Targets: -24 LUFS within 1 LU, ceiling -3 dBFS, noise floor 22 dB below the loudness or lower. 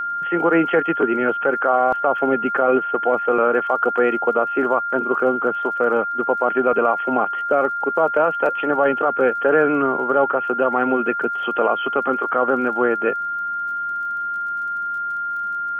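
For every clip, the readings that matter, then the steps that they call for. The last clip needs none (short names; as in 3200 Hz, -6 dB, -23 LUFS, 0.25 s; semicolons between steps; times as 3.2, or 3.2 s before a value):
ticks 31/s; steady tone 1400 Hz; tone level -22 dBFS; loudness -19.5 LUFS; peak -6.0 dBFS; loudness target -24.0 LUFS
-> de-click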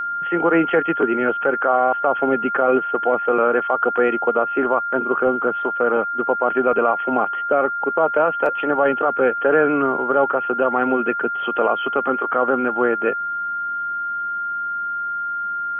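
ticks 0.063/s; steady tone 1400 Hz; tone level -22 dBFS
-> notch 1400 Hz, Q 30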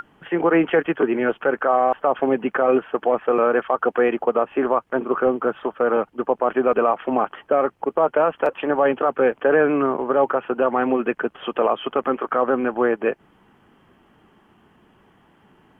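steady tone none; loudness -21.0 LUFS; peak -7.0 dBFS; loudness target -24.0 LUFS
-> gain -3 dB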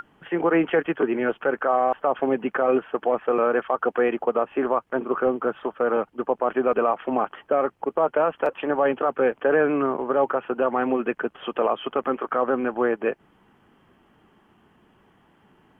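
loudness -24.0 LUFS; peak -10.0 dBFS; noise floor -60 dBFS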